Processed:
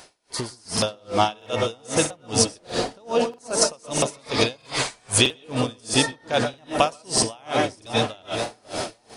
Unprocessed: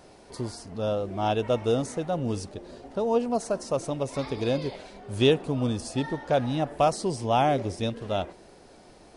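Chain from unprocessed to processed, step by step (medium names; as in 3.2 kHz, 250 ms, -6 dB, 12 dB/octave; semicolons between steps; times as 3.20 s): reverberation, pre-delay 115 ms, DRR 6 dB; in parallel at -2.5 dB: peak limiter -20 dBFS, peak gain reduction 11 dB; on the sum: compression 6:1, threshold -28 dBFS, peak gain reduction 14 dB; tilt shelf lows -8.5 dB, about 940 Hz; on a send: tape echo 546 ms, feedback 79%, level -8 dB, low-pass 1.2 kHz; on the sum: level rider gain up to 16 dB; 4.56–5.18 s: ten-band graphic EQ 250 Hz -7 dB, 500 Hz -9 dB, 1 kHz +5 dB, 4 kHz -4 dB, 8 kHz +9 dB; crackling interface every 0.64 s, samples 2048, repeat, from 0.73 s; logarithmic tremolo 2.5 Hz, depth 34 dB; trim +1.5 dB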